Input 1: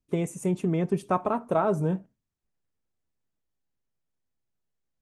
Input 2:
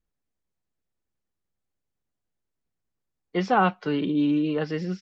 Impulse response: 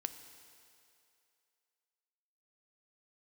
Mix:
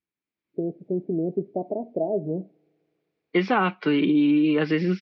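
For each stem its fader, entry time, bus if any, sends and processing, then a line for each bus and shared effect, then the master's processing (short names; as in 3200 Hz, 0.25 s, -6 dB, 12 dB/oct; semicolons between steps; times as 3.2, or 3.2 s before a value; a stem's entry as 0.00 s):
-7.0 dB, 0.45 s, send -23.5 dB, steep low-pass 720 Hz 72 dB/oct; tilt +3.5 dB/oct
-4.5 dB, 0.00 s, no send, dry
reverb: on, RT60 2.6 s, pre-delay 3 ms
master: AGC gain up to 12 dB; speaker cabinet 150–4500 Hz, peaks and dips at 330 Hz +5 dB, 520 Hz -4 dB, 740 Hz -5 dB, 2300 Hz +9 dB; compressor, threshold -17 dBFS, peak gain reduction 7 dB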